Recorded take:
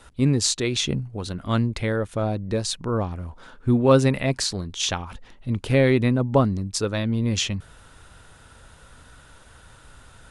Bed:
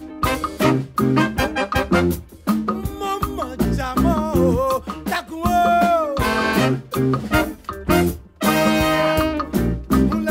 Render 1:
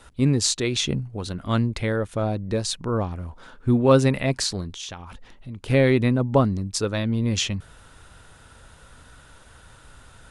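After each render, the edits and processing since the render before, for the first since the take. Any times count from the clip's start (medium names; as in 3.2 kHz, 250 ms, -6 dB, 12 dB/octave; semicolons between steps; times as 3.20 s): 4.74–5.68 s: compression 2.5:1, threshold -37 dBFS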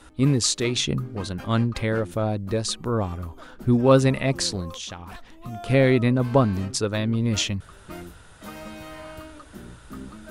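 add bed -22.5 dB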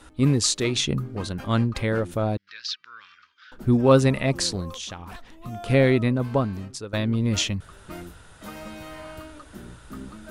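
2.37–3.52 s: elliptic band-pass 1.5–5.3 kHz; 5.80–6.93 s: fade out, to -13 dB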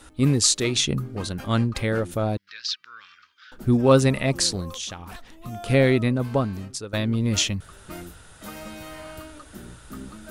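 treble shelf 5.3 kHz +6.5 dB; band-stop 1 kHz, Q 23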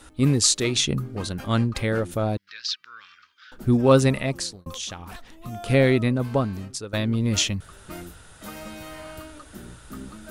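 4.11–4.66 s: fade out linear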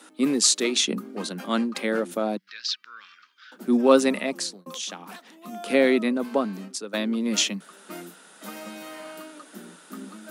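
steep high-pass 180 Hz 72 dB/octave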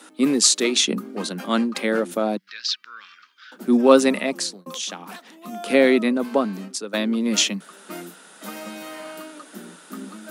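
trim +3.5 dB; peak limiter -1 dBFS, peak gain reduction 2 dB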